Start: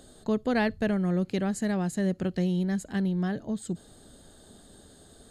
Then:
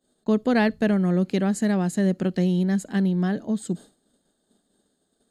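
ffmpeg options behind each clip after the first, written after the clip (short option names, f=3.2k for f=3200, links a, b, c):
-af "agate=range=-33dB:threshold=-39dB:ratio=3:detection=peak,lowshelf=f=140:t=q:w=1.5:g=-9.5,volume=4dB"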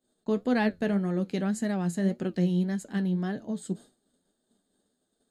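-af "flanger=delay=7.9:depth=3.9:regen=59:speed=1.8:shape=sinusoidal,volume=-1.5dB"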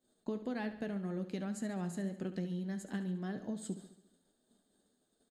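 -filter_complex "[0:a]acompressor=threshold=-35dB:ratio=6,asplit=2[a][b];[b]aecho=0:1:70|140|210|280|350|420:0.237|0.133|0.0744|0.0416|0.0233|0.0131[c];[a][c]amix=inputs=2:normalize=0,volume=-1dB"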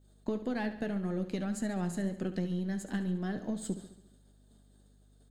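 -af "aeval=exprs='if(lt(val(0),0),0.708*val(0),val(0))':c=same,aeval=exprs='val(0)+0.000447*(sin(2*PI*50*n/s)+sin(2*PI*2*50*n/s)/2+sin(2*PI*3*50*n/s)/3+sin(2*PI*4*50*n/s)/4+sin(2*PI*5*50*n/s)/5)':c=same,volume=6dB"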